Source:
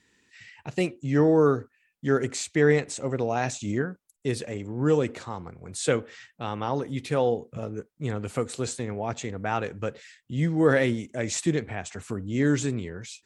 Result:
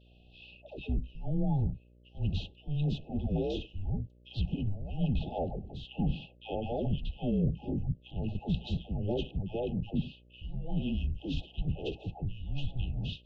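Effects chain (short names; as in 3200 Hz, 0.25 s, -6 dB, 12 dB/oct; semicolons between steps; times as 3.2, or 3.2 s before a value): bell 1700 Hz +12.5 dB 0.36 oct; reverse; compressor 16:1, threshold -31 dBFS, peak gain reduction 19 dB; reverse; mistuned SSB -300 Hz 230–3600 Hz; dispersion lows, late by 0.114 s, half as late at 720 Hz; buzz 60 Hz, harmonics 10, -67 dBFS -6 dB/oct; brick-wall FIR band-stop 860–2500 Hz; gain +7 dB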